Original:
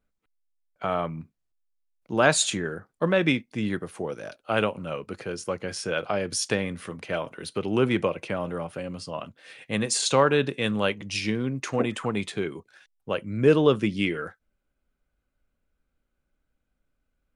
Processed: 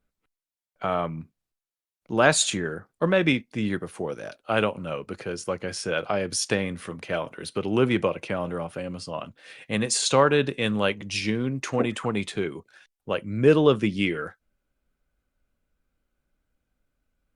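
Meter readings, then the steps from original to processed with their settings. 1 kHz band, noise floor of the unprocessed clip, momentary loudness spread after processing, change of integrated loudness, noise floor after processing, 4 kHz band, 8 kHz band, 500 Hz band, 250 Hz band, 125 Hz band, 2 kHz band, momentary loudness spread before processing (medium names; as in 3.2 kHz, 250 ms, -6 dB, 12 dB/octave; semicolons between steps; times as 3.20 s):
+1.0 dB, -79 dBFS, 14 LU, +1.0 dB, under -85 dBFS, +1.0 dB, +1.0 dB, +1.0 dB, +1.0 dB, +1.0 dB, +1.0 dB, 14 LU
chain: trim +1 dB; Opus 64 kbps 48 kHz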